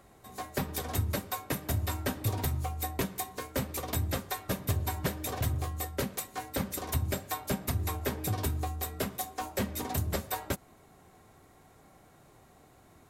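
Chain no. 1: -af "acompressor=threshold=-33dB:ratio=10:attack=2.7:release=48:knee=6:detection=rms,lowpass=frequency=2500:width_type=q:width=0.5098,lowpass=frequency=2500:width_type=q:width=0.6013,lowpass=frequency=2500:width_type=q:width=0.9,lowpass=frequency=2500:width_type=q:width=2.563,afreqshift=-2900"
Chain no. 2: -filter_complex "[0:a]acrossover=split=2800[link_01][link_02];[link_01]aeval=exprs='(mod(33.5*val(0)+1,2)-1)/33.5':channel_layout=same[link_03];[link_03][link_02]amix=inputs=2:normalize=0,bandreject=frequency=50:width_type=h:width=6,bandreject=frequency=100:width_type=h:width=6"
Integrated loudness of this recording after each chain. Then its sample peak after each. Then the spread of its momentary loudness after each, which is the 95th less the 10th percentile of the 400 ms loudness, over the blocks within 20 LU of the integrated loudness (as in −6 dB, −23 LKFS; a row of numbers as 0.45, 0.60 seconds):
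−36.5, −35.5 LKFS; −26.0, −19.5 dBFS; 22, 3 LU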